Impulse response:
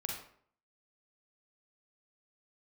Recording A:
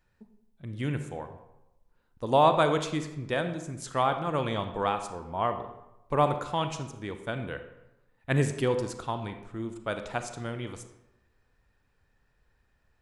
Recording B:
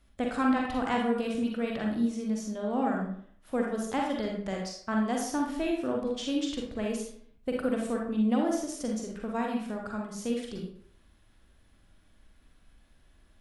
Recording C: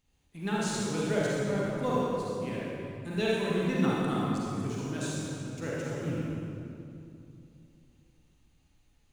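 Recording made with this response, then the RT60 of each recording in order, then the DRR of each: B; 0.95, 0.60, 2.7 seconds; 7.5, −0.5, −6.5 decibels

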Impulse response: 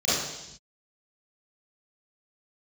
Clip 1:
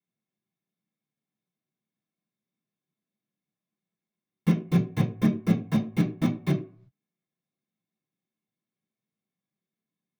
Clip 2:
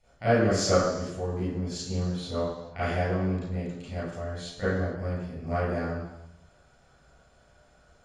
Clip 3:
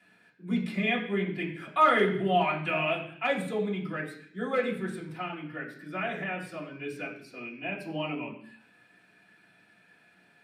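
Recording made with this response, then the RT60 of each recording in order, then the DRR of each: 2; 0.45 s, non-exponential decay, 0.60 s; −4.5, −12.5, −7.5 decibels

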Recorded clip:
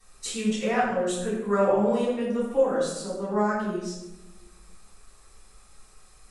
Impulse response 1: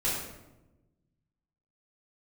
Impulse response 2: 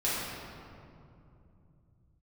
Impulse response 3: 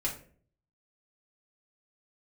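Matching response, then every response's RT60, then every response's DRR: 1; 1.0, 2.7, 0.45 seconds; −9.5, −10.5, −4.5 decibels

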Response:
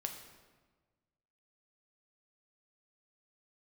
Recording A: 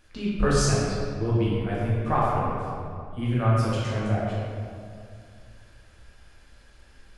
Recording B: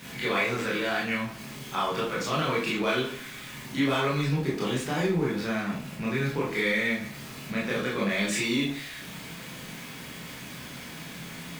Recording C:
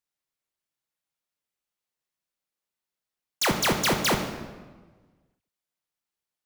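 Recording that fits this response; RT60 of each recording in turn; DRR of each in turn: C; 2.3, 0.45, 1.4 seconds; −7.5, −7.0, 3.5 decibels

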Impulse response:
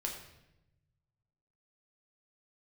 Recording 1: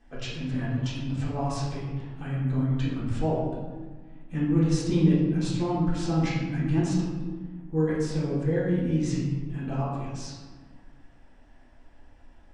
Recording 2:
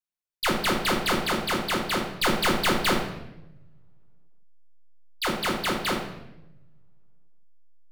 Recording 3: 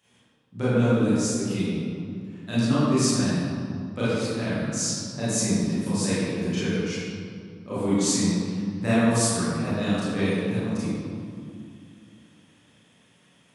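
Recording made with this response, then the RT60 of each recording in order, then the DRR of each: 2; 1.5, 0.90, 2.4 seconds; −9.0, −0.5, −12.5 decibels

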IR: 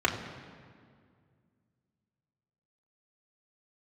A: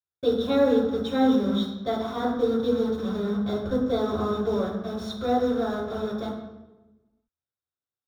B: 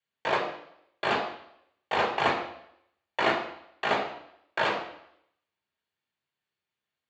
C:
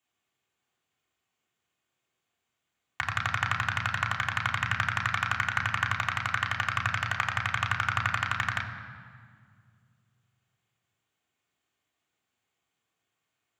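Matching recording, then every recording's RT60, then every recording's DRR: C; 1.1, 0.70, 2.1 seconds; −13.5, −4.5, −2.0 decibels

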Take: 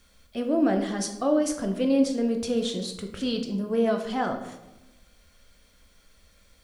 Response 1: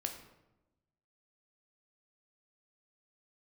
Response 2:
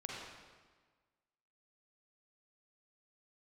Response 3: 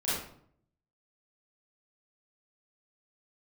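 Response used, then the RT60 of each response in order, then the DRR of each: 1; 1.0, 1.5, 0.60 seconds; 3.5, −3.5, −11.5 decibels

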